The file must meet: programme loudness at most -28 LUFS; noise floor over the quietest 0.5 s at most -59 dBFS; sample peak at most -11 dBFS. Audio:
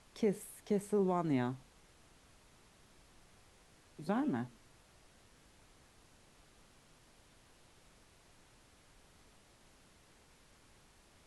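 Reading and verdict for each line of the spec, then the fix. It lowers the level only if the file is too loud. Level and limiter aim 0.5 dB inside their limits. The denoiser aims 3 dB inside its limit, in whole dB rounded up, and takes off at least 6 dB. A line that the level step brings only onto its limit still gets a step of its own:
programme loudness -36.5 LUFS: OK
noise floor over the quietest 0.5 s -64 dBFS: OK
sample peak -21.5 dBFS: OK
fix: none

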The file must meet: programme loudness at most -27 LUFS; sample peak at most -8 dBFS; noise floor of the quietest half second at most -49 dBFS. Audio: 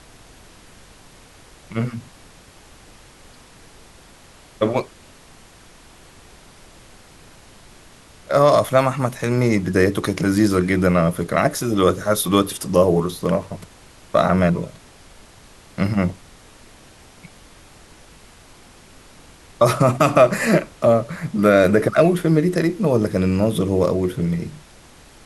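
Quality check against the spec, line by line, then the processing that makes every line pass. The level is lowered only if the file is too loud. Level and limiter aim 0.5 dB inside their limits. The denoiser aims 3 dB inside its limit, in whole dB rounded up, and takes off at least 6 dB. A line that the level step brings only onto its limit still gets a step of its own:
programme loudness -18.5 LUFS: fail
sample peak -3.0 dBFS: fail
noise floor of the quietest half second -47 dBFS: fail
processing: gain -9 dB

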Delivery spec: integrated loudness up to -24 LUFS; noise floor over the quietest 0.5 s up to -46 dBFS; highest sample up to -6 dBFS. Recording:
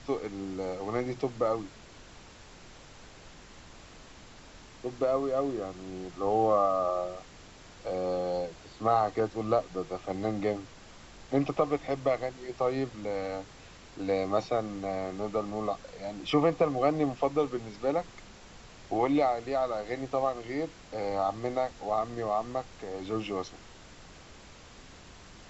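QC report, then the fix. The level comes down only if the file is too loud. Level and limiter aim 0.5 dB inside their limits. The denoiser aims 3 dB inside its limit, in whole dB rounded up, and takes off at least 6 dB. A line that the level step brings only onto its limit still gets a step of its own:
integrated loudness -31.0 LUFS: OK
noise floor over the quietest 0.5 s -51 dBFS: OK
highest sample -12.5 dBFS: OK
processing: none

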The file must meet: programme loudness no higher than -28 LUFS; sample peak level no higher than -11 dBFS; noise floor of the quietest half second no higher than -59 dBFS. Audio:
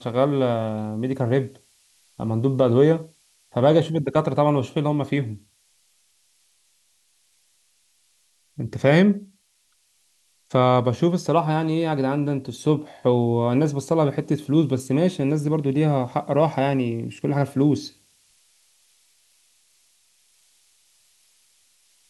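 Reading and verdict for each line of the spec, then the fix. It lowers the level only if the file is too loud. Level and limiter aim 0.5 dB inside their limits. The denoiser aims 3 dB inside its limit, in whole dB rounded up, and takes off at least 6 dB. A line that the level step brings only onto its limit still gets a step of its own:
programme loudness -22.0 LUFS: fail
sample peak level -5.5 dBFS: fail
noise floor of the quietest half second -65 dBFS: OK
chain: gain -6.5 dB

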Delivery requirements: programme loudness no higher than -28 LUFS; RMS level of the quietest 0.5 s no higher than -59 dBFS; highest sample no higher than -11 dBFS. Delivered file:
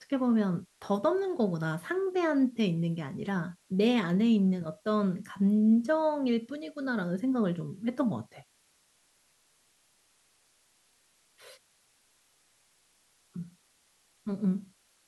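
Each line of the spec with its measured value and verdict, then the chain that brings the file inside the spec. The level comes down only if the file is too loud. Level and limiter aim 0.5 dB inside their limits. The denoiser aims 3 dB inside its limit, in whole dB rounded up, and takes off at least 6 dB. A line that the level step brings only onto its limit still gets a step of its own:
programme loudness -29.5 LUFS: OK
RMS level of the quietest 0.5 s -68 dBFS: OK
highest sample -14.5 dBFS: OK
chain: none

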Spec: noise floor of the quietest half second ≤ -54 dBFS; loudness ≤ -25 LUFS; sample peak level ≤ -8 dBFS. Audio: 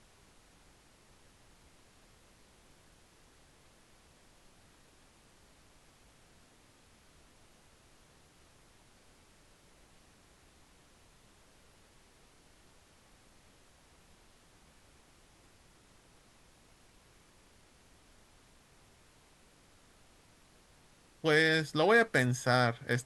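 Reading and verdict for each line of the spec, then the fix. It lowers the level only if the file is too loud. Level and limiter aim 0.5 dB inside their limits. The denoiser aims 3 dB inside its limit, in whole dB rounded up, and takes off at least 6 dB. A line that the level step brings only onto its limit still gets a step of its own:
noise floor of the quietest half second -63 dBFS: OK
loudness -28.0 LUFS: OK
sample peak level -12.5 dBFS: OK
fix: none

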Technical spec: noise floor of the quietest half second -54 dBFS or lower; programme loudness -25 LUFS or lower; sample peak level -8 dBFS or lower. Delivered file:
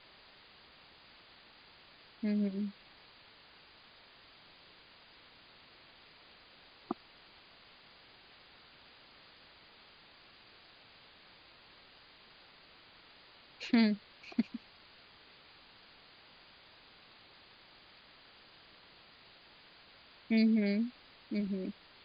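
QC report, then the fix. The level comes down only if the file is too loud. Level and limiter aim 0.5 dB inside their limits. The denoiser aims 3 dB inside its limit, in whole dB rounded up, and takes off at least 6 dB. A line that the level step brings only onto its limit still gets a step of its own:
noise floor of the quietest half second -60 dBFS: OK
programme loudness -34.5 LUFS: OK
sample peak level -16.0 dBFS: OK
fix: none

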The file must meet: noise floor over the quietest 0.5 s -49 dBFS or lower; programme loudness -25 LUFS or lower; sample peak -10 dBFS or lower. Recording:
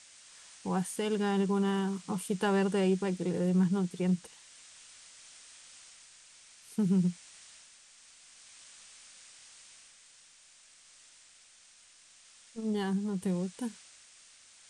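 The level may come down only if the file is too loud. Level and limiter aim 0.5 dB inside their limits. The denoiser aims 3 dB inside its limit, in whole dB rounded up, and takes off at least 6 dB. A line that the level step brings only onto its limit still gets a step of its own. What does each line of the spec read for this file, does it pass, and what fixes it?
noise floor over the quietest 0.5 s -59 dBFS: OK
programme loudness -31.5 LUFS: OK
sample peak -18.0 dBFS: OK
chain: none

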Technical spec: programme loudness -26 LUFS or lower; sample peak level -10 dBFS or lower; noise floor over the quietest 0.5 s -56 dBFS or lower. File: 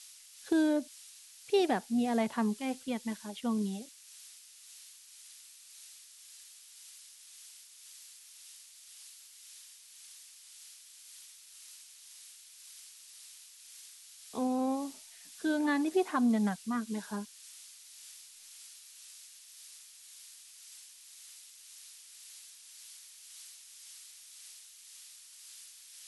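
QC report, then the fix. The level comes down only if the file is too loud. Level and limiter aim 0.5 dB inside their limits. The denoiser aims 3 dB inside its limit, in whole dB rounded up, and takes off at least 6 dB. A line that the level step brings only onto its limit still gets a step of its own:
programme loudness -32.5 LUFS: OK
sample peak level -17.5 dBFS: OK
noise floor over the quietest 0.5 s -54 dBFS: fail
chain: denoiser 6 dB, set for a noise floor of -54 dBFS

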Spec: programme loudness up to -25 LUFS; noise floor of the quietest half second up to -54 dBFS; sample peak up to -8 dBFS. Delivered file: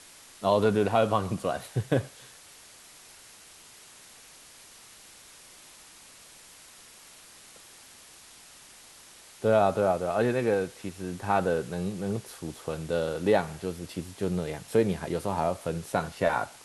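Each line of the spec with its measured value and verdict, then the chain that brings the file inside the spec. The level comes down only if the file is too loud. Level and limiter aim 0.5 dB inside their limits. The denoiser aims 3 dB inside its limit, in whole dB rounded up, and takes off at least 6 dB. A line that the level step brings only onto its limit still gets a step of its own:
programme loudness -28.5 LUFS: OK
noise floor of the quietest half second -52 dBFS: fail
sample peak -10.5 dBFS: OK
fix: denoiser 6 dB, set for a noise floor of -52 dBFS

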